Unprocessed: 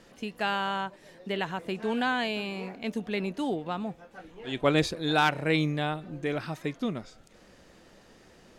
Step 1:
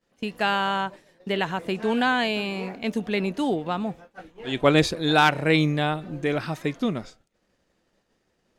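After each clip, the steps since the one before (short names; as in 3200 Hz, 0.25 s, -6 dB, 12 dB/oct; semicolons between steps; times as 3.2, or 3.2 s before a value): expander -42 dBFS; gain +5.5 dB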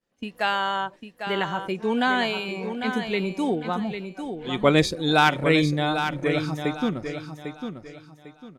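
spectral noise reduction 8 dB; on a send: feedback echo 0.8 s, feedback 30%, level -8 dB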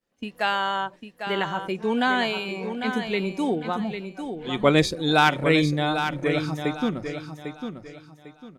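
notches 60/120/180 Hz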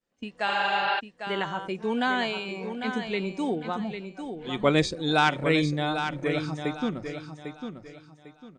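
spectral repair 0.51–0.97, 250–5500 Hz before; brick-wall FIR low-pass 9200 Hz; gain -3.5 dB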